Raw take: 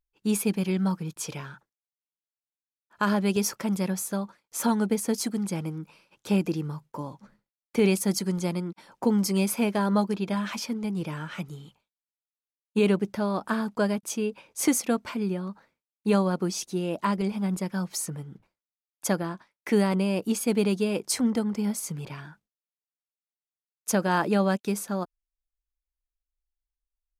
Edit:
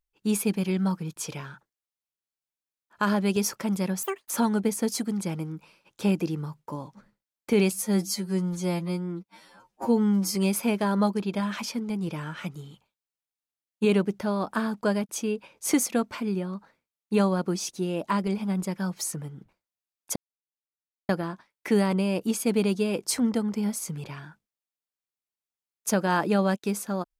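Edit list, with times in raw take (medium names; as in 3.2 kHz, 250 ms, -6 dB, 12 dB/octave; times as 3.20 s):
4.03–4.56 s: speed 197%
7.97–9.29 s: stretch 2×
19.10 s: insert silence 0.93 s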